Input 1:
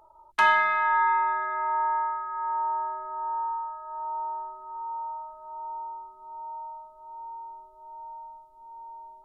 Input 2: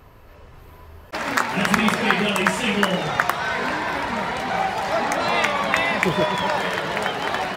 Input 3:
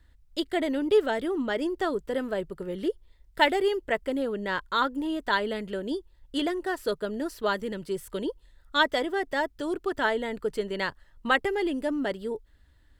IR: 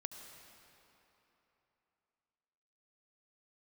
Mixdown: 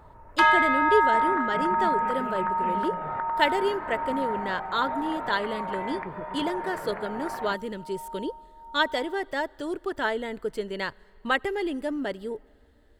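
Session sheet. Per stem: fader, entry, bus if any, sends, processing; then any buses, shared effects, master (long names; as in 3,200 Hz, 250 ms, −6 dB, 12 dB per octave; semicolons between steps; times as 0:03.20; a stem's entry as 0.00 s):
−0.5 dB, 0.00 s, send −9.5 dB, no processing
−5.0 dB, 0.00 s, no send, low-pass filter 1,800 Hz 24 dB per octave; downward compressor, threshold −29 dBFS, peak gain reduction 15 dB
−2.0 dB, 0.00 s, send −17.5 dB, no processing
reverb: on, RT60 3.4 s, pre-delay 65 ms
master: no processing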